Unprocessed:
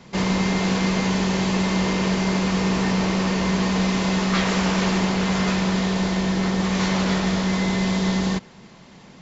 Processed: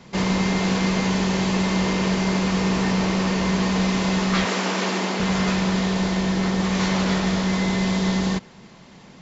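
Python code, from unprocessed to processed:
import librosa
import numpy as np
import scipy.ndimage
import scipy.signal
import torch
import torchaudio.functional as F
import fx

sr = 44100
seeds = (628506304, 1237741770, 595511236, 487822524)

y = fx.highpass(x, sr, hz=220.0, slope=24, at=(4.45, 5.2))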